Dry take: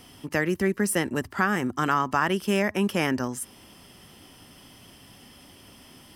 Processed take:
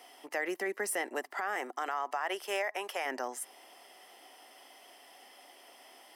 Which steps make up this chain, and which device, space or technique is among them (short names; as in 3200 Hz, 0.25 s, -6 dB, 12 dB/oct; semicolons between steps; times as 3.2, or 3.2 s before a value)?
1.33–3.04 HPF 230 Hz -> 590 Hz 12 dB/oct; laptop speaker (HPF 370 Hz 24 dB/oct; bell 730 Hz +11 dB 0.53 oct; bell 2000 Hz +7.5 dB 0.24 oct; limiter -17.5 dBFS, peak gain reduction 11.5 dB); gain -6 dB